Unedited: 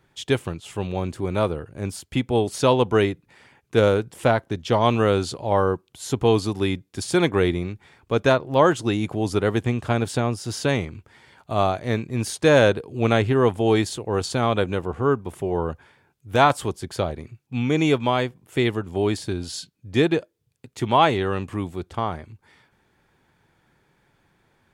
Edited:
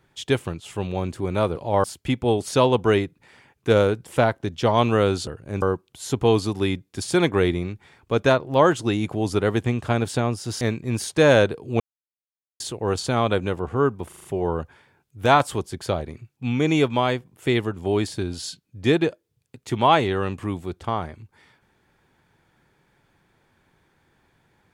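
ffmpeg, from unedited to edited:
ffmpeg -i in.wav -filter_complex "[0:a]asplit=12[link_01][link_02][link_03][link_04][link_05][link_06][link_07][link_08][link_09][link_10][link_11][link_12];[link_01]atrim=end=1.562[link_13];[link_02]atrim=start=5.338:end=5.622[link_14];[link_03]atrim=start=1.908:end=5.342[link_15];[link_04]atrim=start=1.558:end=1.912[link_16];[link_05]atrim=start=5.618:end=10.612[link_17];[link_06]atrim=start=11.868:end=13.06,asetpts=PTS-STARTPTS,afade=type=out:start_time=1.188:duration=0.004:curve=hsin[link_18];[link_07]atrim=start=13.06:end=13.86,asetpts=PTS-STARTPTS,volume=0[link_19];[link_08]atrim=start=13.86:end=15.382,asetpts=PTS-STARTPTS,afade=type=in:duration=0.004:curve=hsin[link_20];[link_09]atrim=start=15.338:end=15.382[link_21];[link_10]atrim=start=15.338:end=15.382[link_22];[link_11]atrim=start=15.338:end=15.382[link_23];[link_12]atrim=start=15.338[link_24];[link_13][link_14]acrossfade=duration=0.004:curve1=hsin:curve2=hsin[link_25];[link_25][link_15]acrossfade=duration=0.004:curve1=hsin:curve2=hsin[link_26];[link_26][link_16]acrossfade=duration=0.004:curve1=hsin:curve2=hsin[link_27];[link_27][link_17]acrossfade=duration=0.004:curve1=hsin:curve2=hsin[link_28];[link_18][link_19][link_20]concat=n=3:v=0:a=1[link_29];[link_28][link_29]acrossfade=duration=0.004:curve1=hsin:curve2=hsin[link_30];[link_30][link_21]acrossfade=duration=0.004:curve1=hsin:curve2=hsin[link_31];[link_31][link_22]acrossfade=duration=0.004:curve1=hsin:curve2=hsin[link_32];[link_32][link_23]acrossfade=duration=0.004:curve1=hsin:curve2=hsin[link_33];[link_33][link_24]acrossfade=duration=0.004:curve1=hsin:curve2=hsin" out.wav

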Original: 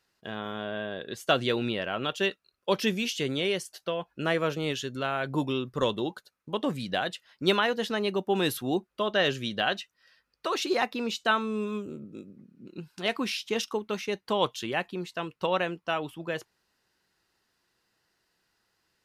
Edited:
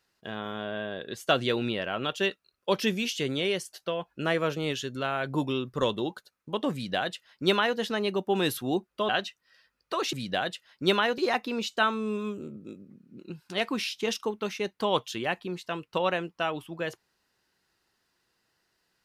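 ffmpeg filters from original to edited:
ffmpeg -i in.wav -filter_complex "[0:a]asplit=4[link_01][link_02][link_03][link_04];[link_01]atrim=end=9.092[link_05];[link_02]atrim=start=9.618:end=10.662[link_06];[link_03]atrim=start=6.728:end=7.782[link_07];[link_04]atrim=start=10.658[link_08];[link_05][link_06]acrossfade=duration=0.004:curve1=hsin:curve2=hsin[link_09];[link_09][link_07]acrossfade=duration=0.004:curve1=hsin:curve2=hsin[link_10];[link_10][link_08]acrossfade=duration=0.004:curve1=hsin:curve2=hsin" out.wav

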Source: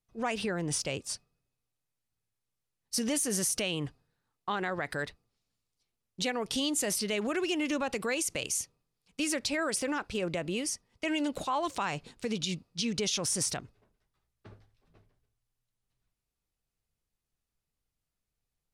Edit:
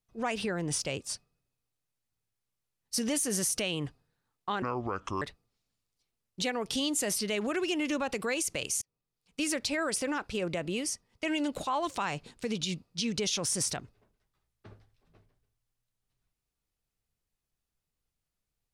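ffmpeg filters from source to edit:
ffmpeg -i in.wav -filter_complex "[0:a]asplit=4[link_01][link_02][link_03][link_04];[link_01]atrim=end=4.624[link_05];[link_02]atrim=start=4.62:end=5.02,asetpts=PTS-STARTPTS,asetrate=29547,aresample=44100,atrim=end_sample=26328,asetpts=PTS-STARTPTS[link_06];[link_03]atrim=start=5.016:end=8.62,asetpts=PTS-STARTPTS,afade=type=out:start_time=3.6:duration=0.004:curve=hsin[link_07];[link_04]atrim=start=8.62,asetpts=PTS-STARTPTS,afade=type=in:duration=0.58[link_08];[link_05][link_06]acrossfade=duration=0.004:curve1=hsin:curve2=hsin[link_09];[link_07][link_08]concat=n=2:v=0:a=1[link_10];[link_09][link_10]acrossfade=duration=0.004:curve1=hsin:curve2=hsin" out.wav

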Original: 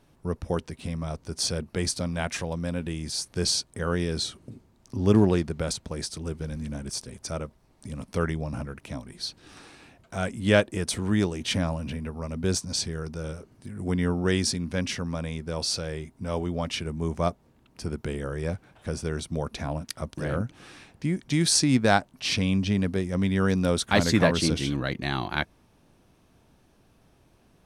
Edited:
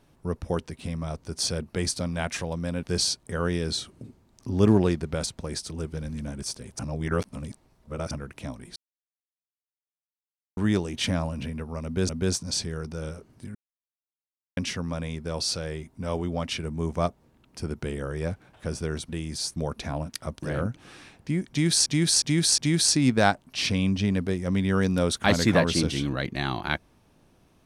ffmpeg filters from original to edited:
ffmpeg -i in.wav -filter_complex "[0:a]asplit=14[link_01][link_02][link_03][link_04][link_05][link_06][link_07][link_08][link_09][link_10][link_11][link_12][link_13][link_14];[link_01]atrim=end=2.832[link_15];[link_02]atrim=start=3.298:end=7.262[link_16];[link_03]atrim=start=7.258:end=8.582,asetpts=PTS-STARTPTS,areverse[link_17];[link_04]atrim=start=8.578:end=9.23,asetpts=PTS-STARTPTS,afade=type=out:start_time=0.648:duration=0.004:curve=hsin[link_18];[link_05]atrim=start=9.23:end=11.04,asetpts=PTS-STARTPTS,volume=0[link_19];[link_06]atrim=start=11.04:end=12.562,asetpts=PTS-STARTPTS,afade=type=in:duration=0.004:curve=hsin[link_20];[link_07]atrim=start=12.308:end=13.77,asetpts=PTS-STARTPTS,afade=type=out:start_time=1.458:duration=0.004:curve=hsin[link_21];[link_08]atrim=start=13.77:end=14.79,asetpts=PTS-STARTPTS,volume=0[link_22];[link_09]atrim=start=14.79:end=19.312,asetpts=PTS-STARTPTS,afade=type=in:duration=0.004:curve=hsin[link_23];[link_10]atrim=start=2.828:end=3.302[link_24];[link_11]atrim=start=19.308:end=21.612[link_25];[link_12]atrim=start=21.248:end=21.612[link_26];[link_13]atrim=start=21.248:end=21.612[link_27];[link_14]atrim=start=21.248[link_28];[link_15][link_16]acrossfade=duration=0.004:curve1=hsin:curve2=hsin[link_29];[link_29][link_17]acrossfade=duration=0.004:curve1=hsin:curve2=hsin[link_30];[link_18][link_19][link_20]concat=n=3:v=0:a=1[link_31];[link_30][link_31]acrossfade=duration=0.004:curve1=hsin:curve2=hsin[link_32];[link_21][link_22][link_23]concat=n=3:v=0:a=1[link_33];[link_32][link_33]acrossfade=duration=0.004:curve1=hsin:curve2=hsin[link_34];[link_34][link_24]acrossfade=duration=0.004:curve1=hsin:curve2=hsin[link_35];[link_35][link_25]acrossfade=duration=0.004:curve1=hsin:curve2=hsin[link_36];[link_36][link_26]acrossfade=duration=0.004:curve1=hsin:curve2=hsin[link_37];[link_37][link_27]acrossfade=duration=0.004:curve1=hsin:curve2=hsin[link_38];[link_38][link_28]acrossfade=duration=0.004:curve1=hsin:curve2=hsin" out.wav

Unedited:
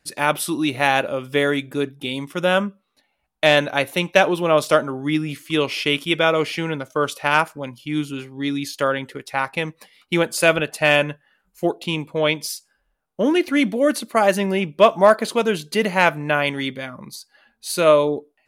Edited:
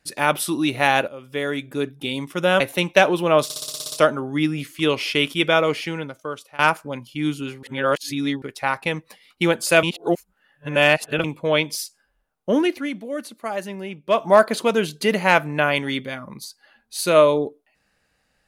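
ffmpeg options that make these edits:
ffmpeg -i in.wav -filter_complex "[0:a]asplit=18[link_01][link_02][link_03][link_04][link_05][link_06][link_07][link_08][link_09][link_10][link_11][link_12][link_13][link_14][link_15][link_16][link_17][link_18];[link_01]atrim=end=1.08,asetpts=PTS-STARTPTS,afade=type=out:start_time=1.076:duration=0.004:curve=hsin:silence=0.177828[link_19];[link_02]atrim=start=1.08:end=2.602,asetpts=PTS-STARTPTS,afade=type=in:duration=0.92:silence=0.177828[link_20];[link_03]atrim=start=3.788:end=4.692[link_21];[link_04]atrim=start=4.628:end=4.692[link_22];[link_05]atrim=start=4.628:end=4.692[link_23];[link_06]atrim=start=4.628:end=4.692[link_24];[link_07]atrim=start=4.628:end=4.692[link_25];[link_08]atrim=start=4.628:end=4.692[link_26];[link_09]atrim=start=4.628:end=4.692[link_27];[link_10]atrim=start=4.628:end=4.692[link_28];[link_11]atrim=start=4.628:end=7.3,asetpts=PTS-STARTPTS,afade=type=out:start_time=1.672:duration=1:silence=0.0668344[link_29];[link_12]atrim=start=7.3:end=8.342,asetpts=PTS-STARTPTS,afade=type=in:duration=0.004:curve=hsin:silence=0.0668344[link_30];[link_13]atrim=start=8.338:end=9.132,asetpts=PTS-STARTPTS,areverse[link_31];[link_14]atrim=start=9.128:end=10.542[link_32];[link_15]atrim=start=10.538:end=11.952,asetpts=PTS-STARTPTS,areverse[link_33];[link_16]atrim=start=11.948:end=13.61,asetpts=PTS-STARTPTS,afade=type=out:start_time=1.312:duration=0.35:silence=0.281838[link_34];[link_17]atrim=start=13.61:end=14.74,asetpts=PTS-STARTPTS,volume=-11dB[link_35];[link_18]atrim=start=14.74,asetpts=PTS-STARTPTS,afade=type=in:duration=0.35:silence=0.281838[link_36];[link_19][link_20]concat=n=2:v=0:a=1[link_37];[link_37][link_21]acrossfade=duration=0.004:curve1=hsin:curve2=hsin[link_38];[link_38][link_22]acrossfade=duration=0.004:curve1=hsin:curve2=hsin[link_39];[link_39][link_23]acrossfade=duration=0.004:curve1=hsin:curve2=hsin[link_40];[link_40][link_24]acrossfade=duration=0.004:curve1=hsin:curve2=hsin[link_41];[link_41][link_25]acrossfade=duration=0.004:curve1=hsin:curve2=hsin[link_42];[link_42][link_26]acrossfade=duration=0.004:curve1=hsin:curve2=hsin[link_43];[link_43][link_27]acrossfade=duration=0.004:curve1=hsin:curve2=hsin[link_44];[link_44][link_28]acrossfade=duration=0.004:curve1=hsin:curve2=hsin[link_45];[link_29][link_30]concat=n=2:v=0:a=1[link_46];[link_45][link_46]acrossfade=duration=0.004:curve1=hsin:curve2=hsin[link_47];[link_47][link_31]acrossfade=duration=0.004:curve1=hsin:curve2=hsin[link_48];[link_48][link_32]acrossfade=duration=0.004:curve1=hsin:curve2=hsin[link_49];[link_49][link_33]acrossfade=duration=0.004:curve1=hsin:curve2=hsin[link_50];[link_34][link_35][link_36]concat=n=3:v=0:a=1[link_51];[link_50][link_51]acrossfade=duration=0.004:curve1=hsin:curve2=hsin" out.wav

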